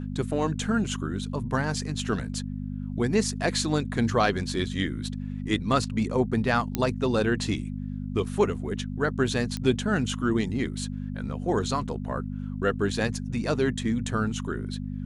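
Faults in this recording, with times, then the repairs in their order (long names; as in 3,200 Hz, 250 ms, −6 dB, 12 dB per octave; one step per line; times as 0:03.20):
mains hum 50 Hz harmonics 5 −33 dBFS
0:06.75: click −10 dBFS
0:09.57: click −17 dBFS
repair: click removal
hum removal 50 Hz, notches 5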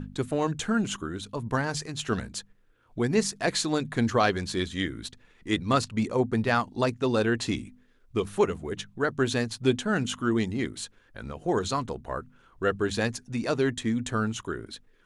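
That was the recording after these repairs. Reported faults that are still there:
0:09.57: click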